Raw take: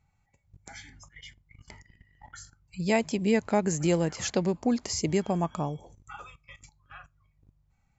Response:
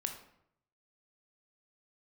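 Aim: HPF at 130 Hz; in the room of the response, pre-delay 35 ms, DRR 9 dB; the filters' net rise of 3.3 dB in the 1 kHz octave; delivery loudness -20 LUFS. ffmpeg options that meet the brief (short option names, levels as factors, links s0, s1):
-filter_complex "[0:a]highpass=130,equalizer=f=1000:t=o:g=4.5,asplit=2[s0][s1];[1:a]atrim=start_sample=2205,adelay=35[s2];[s1][s2]afir=irnorm=-1:irlink=0,volume=0.335[s3];[s0][s3]amix=inputs=2:normalize=0,volume=2.24"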